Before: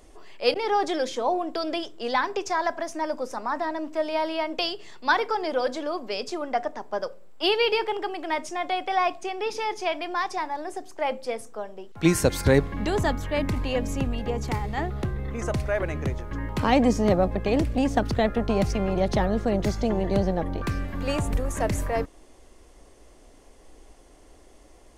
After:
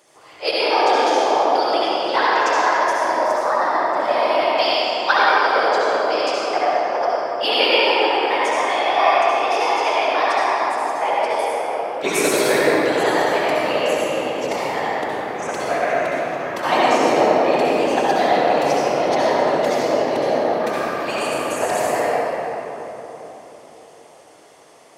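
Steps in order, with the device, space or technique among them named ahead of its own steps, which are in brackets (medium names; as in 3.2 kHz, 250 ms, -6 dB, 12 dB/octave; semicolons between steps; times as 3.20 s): whispering ghost (whisper effect; high-pass 540 Hz 12 dB/octave; reverberation RT60 3.9 s, pre-delay 61 ms, DRR -7.5 dB); trim +3 dB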